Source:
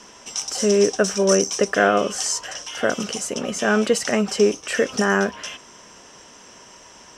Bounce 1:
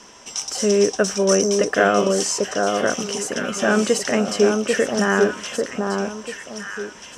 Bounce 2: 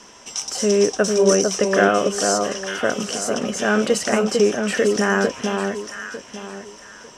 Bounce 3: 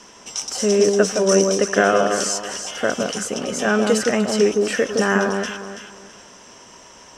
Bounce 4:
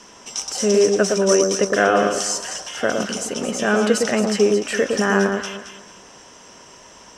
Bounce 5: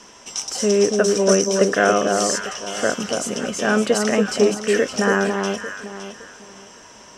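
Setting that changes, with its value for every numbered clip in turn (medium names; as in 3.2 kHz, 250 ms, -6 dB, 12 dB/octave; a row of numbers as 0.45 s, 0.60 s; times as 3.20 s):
echo whose repeats swap between lows and highs, time: 793 ms, 450 ms, 165 ms, 111 ms, 282 ms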